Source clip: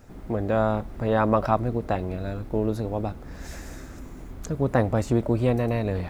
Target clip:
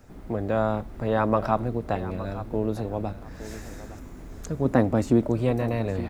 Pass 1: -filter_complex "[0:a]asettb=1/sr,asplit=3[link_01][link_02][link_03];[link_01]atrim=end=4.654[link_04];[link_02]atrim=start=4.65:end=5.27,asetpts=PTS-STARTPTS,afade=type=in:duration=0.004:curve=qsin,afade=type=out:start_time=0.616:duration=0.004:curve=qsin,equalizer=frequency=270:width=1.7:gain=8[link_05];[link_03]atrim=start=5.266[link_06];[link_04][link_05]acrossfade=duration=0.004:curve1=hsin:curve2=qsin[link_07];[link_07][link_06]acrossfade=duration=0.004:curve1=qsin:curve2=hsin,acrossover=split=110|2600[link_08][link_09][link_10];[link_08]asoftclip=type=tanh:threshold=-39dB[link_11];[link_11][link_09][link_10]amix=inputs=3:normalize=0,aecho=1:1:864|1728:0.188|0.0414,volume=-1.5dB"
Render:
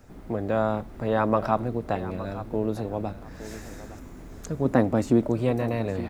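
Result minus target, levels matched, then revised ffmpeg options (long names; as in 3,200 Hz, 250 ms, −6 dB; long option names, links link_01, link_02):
soft clipping: distortion +11 dB
-filter_complex "[0:a]asettb=1/sr,asplit=3[link_01][link_02][link_03];[link_01]atrim=end=4.654[link_04];[link_02]atrim=start=4.65:end=5.27,asetpts=PTS-STARTPTS,afade=type=in:duration=0.004:curve=qsin,afade=type=out:start_time=0.616:duration=0.004:curve=qsin,equalizer=frequency=270:width=1.7:gain=8[link_05];[link_03]atrim=start=5.266[link_06];[link_04][link_05]acrossfade=duration=0.004:curve1=hsin:curve2=qsin[link_07];[link_07][link_06]acrossfade=duration=0.004:curve1=qsin:curve2=hsin,acrossover=split=110|2600[link_08][link_09][link_10];[link_08]asoftclip=type=tanh:threshold=-28.5dB[link_11];[link_11][link_09][link_10]amix=inputs=3:normalize=0,aecho=1:1:864|1728:0.188|0.0414,volume=-1.5dB"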